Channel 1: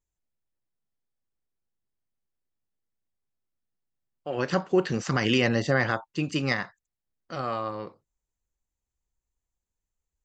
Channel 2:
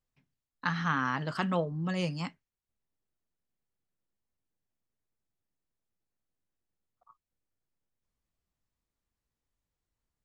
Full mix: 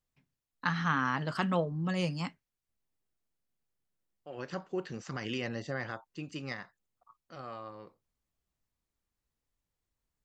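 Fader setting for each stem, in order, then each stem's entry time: −13.0, 0.0 decibels; 0.00, 0.00 seconds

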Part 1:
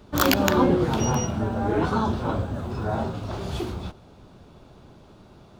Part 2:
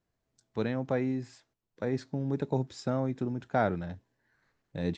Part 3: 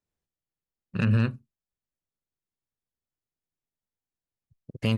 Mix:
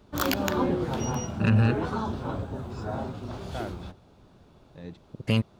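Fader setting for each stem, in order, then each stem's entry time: −6.5, −10.0, +1.5 decibels; 0.00, 0.00, 0.45 seconds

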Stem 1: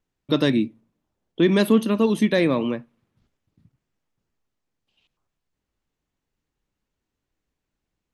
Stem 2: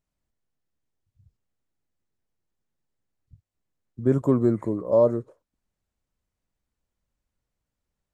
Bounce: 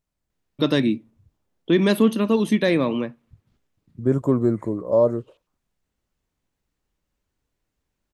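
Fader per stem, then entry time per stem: 0.0, +1.0 decibels; 0.30, 0.00 seconds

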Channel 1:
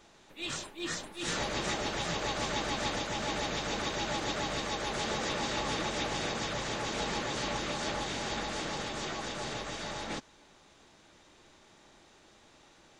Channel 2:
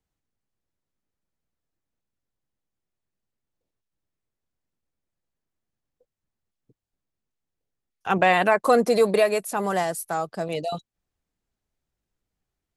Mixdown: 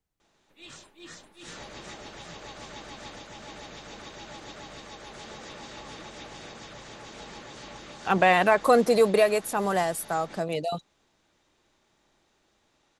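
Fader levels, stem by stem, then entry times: −9.5, −1.0 decibels; 0.20, 0.00 seconds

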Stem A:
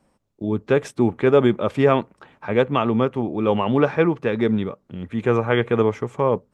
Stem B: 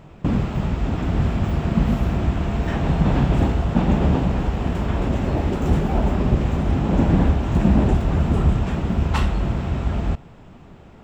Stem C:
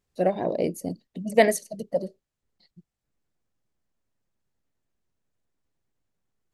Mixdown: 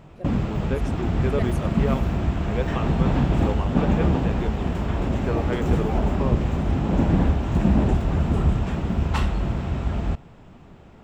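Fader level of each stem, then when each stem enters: −11.0, −2.5, −16.0 decibels; 0.00, 0.00, 0.00 seconds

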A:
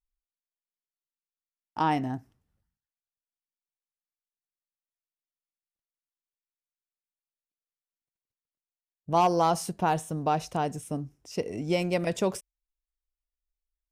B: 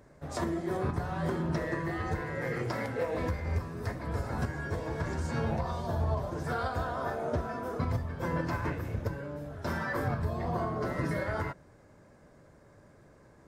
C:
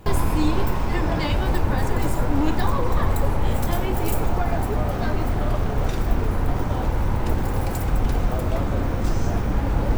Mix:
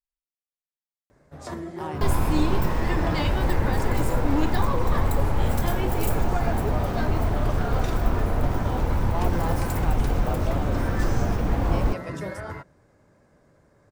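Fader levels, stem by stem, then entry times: −10.5, −2.0, −1.5 decibels; 0.00, 1.10, 1.95 seconds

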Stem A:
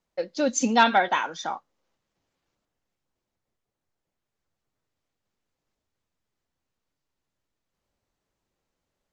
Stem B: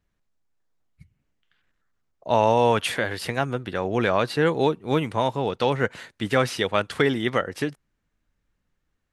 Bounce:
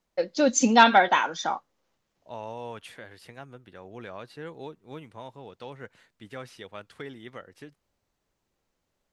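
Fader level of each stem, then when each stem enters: +2.5, −19.0 decibels; 0.00, 0.00 seconds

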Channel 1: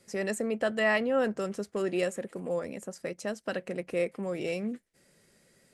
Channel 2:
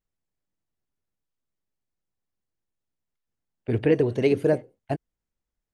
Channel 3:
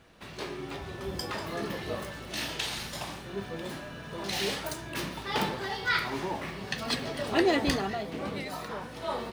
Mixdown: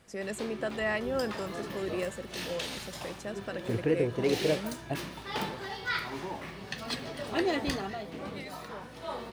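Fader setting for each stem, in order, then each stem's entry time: −5.0, −7.0, −4.5 decibels; 0.00, 0.00, 0.00 seconds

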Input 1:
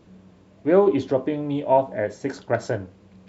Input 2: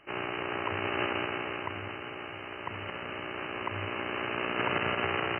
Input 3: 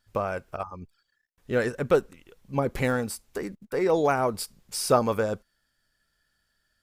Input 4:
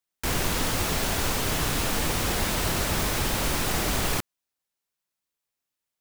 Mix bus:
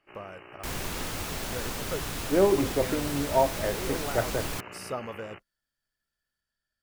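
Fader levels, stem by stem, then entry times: −5.0, −14.5, −13.5, −8.0 decibels; 1.65, 0.00, 0.00, 0.40 seconds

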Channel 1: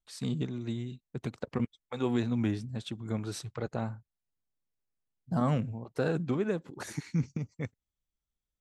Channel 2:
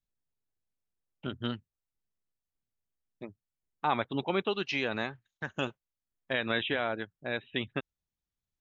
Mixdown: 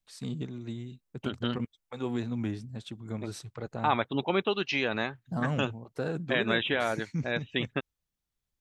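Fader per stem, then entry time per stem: −3.0, +2.5 decibels; 0.00, 0.00 seconds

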